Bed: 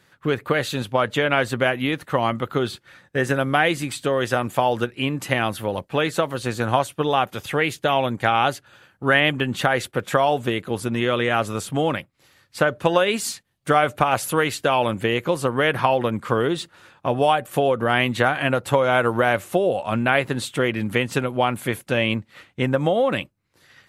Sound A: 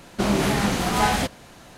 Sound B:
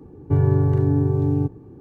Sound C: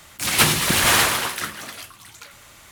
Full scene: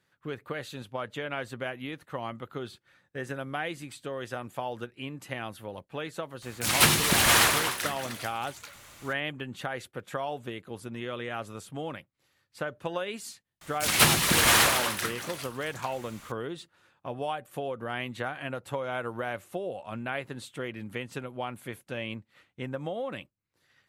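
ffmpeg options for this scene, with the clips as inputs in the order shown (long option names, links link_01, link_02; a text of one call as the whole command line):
ffmpeg -i bed.wav -i cue0.wav -i cue1.wav -i cue2.wav -filter_complex "[3:a]asplit=2[link_01][link_02];[0:a]volume=-14.5dB[link_03];[link_01]atrim=end=2.71,asetpts=PTS-STARTPTS,volume=-4dB,afade=type=in:duration=0.004:curve=hsin,afade=type=out:start_time=2.706:duration=0.004:curve=hsin,adelay=283122S[link_04];[link_02]atrim=end=2.71,asetpts=PTS-STARTPTS,volume=-4dB,afade=type=in:duration=0.004:curve=hsin,afade=type=out:start_time=2.706:duration=0.004:curve=hsin,adelay=13610[link_05];[link_03][link_04][link_05]amix=inputs=3:normalize=0" out.wav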